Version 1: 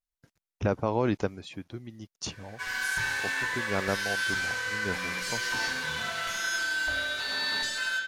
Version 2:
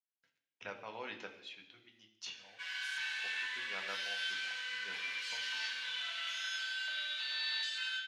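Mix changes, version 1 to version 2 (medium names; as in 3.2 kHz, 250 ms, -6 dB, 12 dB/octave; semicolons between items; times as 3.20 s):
speech: send on; master: add band-pass filter 3 kHz, Q 2.5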